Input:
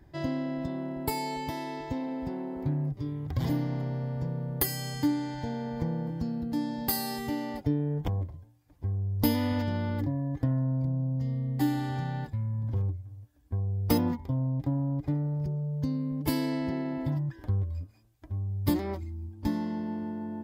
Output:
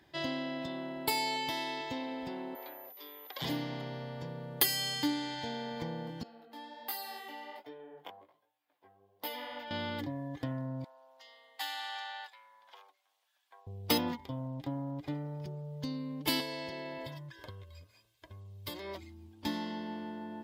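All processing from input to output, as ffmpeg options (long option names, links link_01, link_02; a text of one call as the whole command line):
ffmpeg -i in.wav -filter_complex "[0:a]asettb=1/sr,asplit=3[link_01][link_02][link_03];[link_01]atrim=end=2.554[link_04];[link_02]atrim=start=2.55:end=3.42,asetpts=PTS-STARTPTS,afade=type=in:duration=0.004:curve=qsin,afade=type=out:start_time=0.866:duration=0.004:curve=qsin,highpass=frequency=470:width=0.5412,highpass=frequency=470:width=1.3066,highshelf=frequency=9100:gain=-11.5,aeval=exprs='val(0)+0.00316*sin(2*PI*14000*n/s)':channel_layout=same[link_05];[link_03]atrim=start=3.416[link_06];[link_04][link_05]acrossfade=duration=0.004:curve1=hsin:curve2=qsin[link_07];[link_07][link_06]acrossfade=duration=0.004:curve1=qsin:curve2=hsin,asettb=1/sr,asplit=3[link_08][link_09][link_10];[link_08]atrim=end=6.234[link_11];[link_09]atrim=start=6.23:end=9.71,asetpts=PTS-STARTPTS,afade=type=in:duration=0.004:curve=qsin,afade=type=out:start_time=3.476:duration=0.004:curve=qsin,highpass=590,equalizer=frequency=6100:width=0.43:gain=-14,flanger=delay=15.5:depth=6.1:speed=1.3[link_12];[link_10]atrim=start=9.706[link_13];[link_11][link_12]acrossfade=duration=0.004:curve1=hsin:curve2=qsin[link_14];[link_14][link_13]acrossfade=duration=0.004:curve1=qsin:curve2=hsin,asettb=1/sr,asplit=3[link_15][link_16][link_17];[link_15]atrim=end=10.844[link_18];[link_16]atrim=start=10.84:end=13.67,asetpts=PTS-STARTPTS,afade=type=in:duration=0.004:curve=qsin,afade=type=out:start_time=2.826:duration=0.004:curve=qsin,highpass=frequency=770:width=0.5412,highpass=frequency=770:width=1.3066,highshelf=frequency=5300:gain=-4[link_19];[link_17]atrim=start=13.666[link_20];[link_18][link_19]acrossfade=duration=0.004:curve1=hsin:curve2=qsin[link_21];[link_21][link_20]acrossfade=duration=0.004:curve1=qsin:curve2=hsin,asettb=1/sr,asplit=3[link_22][link_23][link_24];[link_22]atrim=end=16.404[link_25];[link_23]atrim=start=16.4:end=18.95,asetpts=PTS-STARTPTS,afade=type=in:duration=0.004:curve=qsin,afade=type=out:start_time=2.546:duration=0.004:curve=qsin,aecho=1:1:1.9:0.61,atrim=end_sample=112455,acrossover=split=1500|3400[link_26][link_27][link_28];[link_26]acompressor=threshold=-34dB:ratio=4[link_29];[link_27]acompressor=threshold=-59dB:ratio=4[link_30];[link_28]acompressor=threshold=-50dB:ratio=4[link_31];[link_29][link_30][link_31]amix=inputs=3:normalize=0[link_32];[link_24]atrim=start=18.946[link_33];[link_25][link_32]acrossfade=duration=0.004:curve1=hsin:curve2=qsin[link_34];[link_34][link_33]acrossfade=duration=0.004:curve1=qsin:curve2=hsin,highpass=frequency=510:poles=1,equalizer=frequency=3300:width_type=o:width=1.1:gain=11" out.wav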